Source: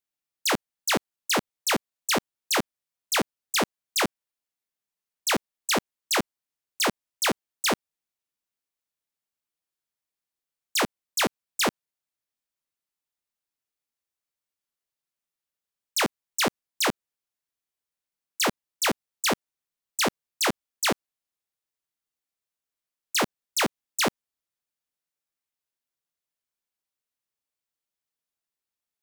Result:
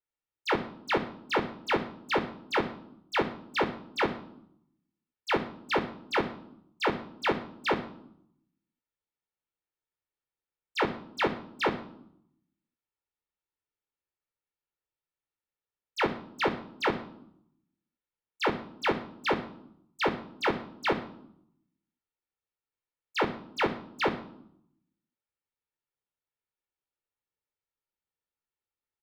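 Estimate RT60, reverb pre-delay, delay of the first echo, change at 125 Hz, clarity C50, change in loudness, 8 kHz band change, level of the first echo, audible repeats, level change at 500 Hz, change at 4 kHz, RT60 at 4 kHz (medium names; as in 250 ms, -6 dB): 0.70 s, 9 ms, 125 ms, -1.0 dB, 12.5 dB, -4.5 dB, -25.0 dB, -22.5 dB, 1, +0.5 dB, -9.5 dB, 0.55 s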